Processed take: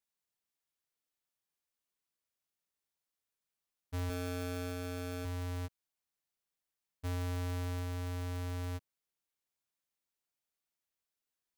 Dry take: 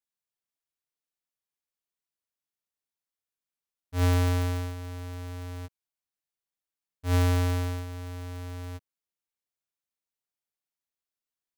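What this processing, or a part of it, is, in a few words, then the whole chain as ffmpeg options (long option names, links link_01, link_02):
de-esser from a sidechain: -filter_complex "[0:a]asplit=2[link_01][link_02];[link_02]highpass=frequency=6300:width=0.5412,highpass=frequency=6300:width=1.3066,apad=whole_len=510617[link_03];[link_01][link_03]sidechaincompress=threshold=-50dB:ratio=10:attack=1.5:release=26,asettb=1/sr,asplit=3[link_04][link_05][link_06];[link_04]atrim=end=4.094[link_07];[link_05]atrim=start=4.09:end=5.25,asetpts=PTS-STARTPTS,afade=type=in:duration=0.004:curve=qsin,afade=type=out:start_time=1.156:duration=0.004:curve=qsin,aecho=1:1:4.6:0.77,atrim=end_sample=51156[link_08];[link_06]atrim=start=5.246[link_09];[link_07][link_08]acrossfade=duration=0.004:curve1=hsin:curve2=qsin[link_10];[link_10][link_09]acrossfade=duration=0.004:curve1=qsin:curve2=hsin,volume=1dB"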